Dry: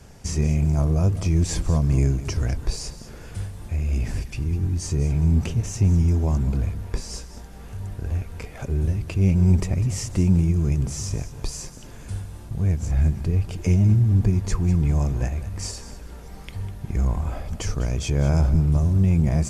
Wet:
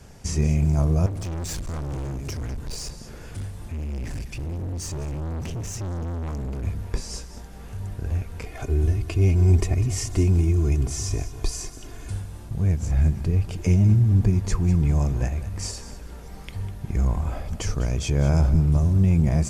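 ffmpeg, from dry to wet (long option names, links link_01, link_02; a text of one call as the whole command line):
ffmpeg -i in.wav -filter_complex "[0:a]asettb=1/sr,asplit=3[link_01][link_02][link_03];[link_01]atrim=end=1.064[link_04];[link_02]atrim=start=1.06:end=6.65,asetpts=PTS-STARTPTS,afade=type=in:duration=0.004:curve=qsin,afade=type=out:start_time=5.586:duration=0.004:curve=qsin,volume=28dB,asoftclip=hard,volume=-28dB[link_05];[link_03]atrim=start=6.646[link_06];[link_04][link_05]acrossfade=duration=0.004:curve1=hsin:curve2=qsin[link_07];[link_07][link_06]acrossfade=duration=0.004:curve1=qsin:curve2=hsin,asettb=1/sr,asplit=3[link_08][link_09][link_10];[link_08]atrim=end=8.464[link_11];[link_09]atrim=start=8.46:end=12.11,asetpts=PTS-STARTPTS,afade=type=in:duration=0.004:curve=qsin,afade=type=out:start_time=3.646:duration=0.004:curve=qsin,aecho=1:1:2.8:0.65,atrim=end_sample=160965[link_12];[link_10]atrim=start=12.106[link_13];[link_11][link_12]acrossfade=duration=0.004:curve1=hsin:curve2=qsin[link_14];[link_14][link_13]acrossfade=duration=0.004:curve1=qsin:curve2=hsin" out.wav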